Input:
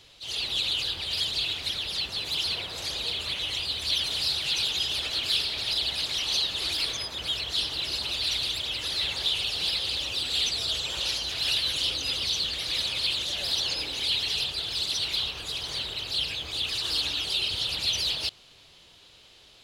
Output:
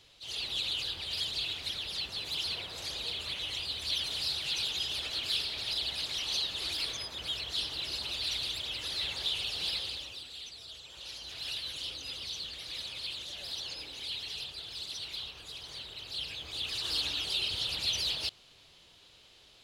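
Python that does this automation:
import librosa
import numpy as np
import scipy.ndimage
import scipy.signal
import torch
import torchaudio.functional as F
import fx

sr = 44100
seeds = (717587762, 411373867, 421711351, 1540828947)

y = fx.gain(x, sr, db=fx.line((9.78, -6.0), (10.37, -18.5), (10.89, -18.5), (11.33, -11.5), (15.86, -11.5), (16.94, -4.5)))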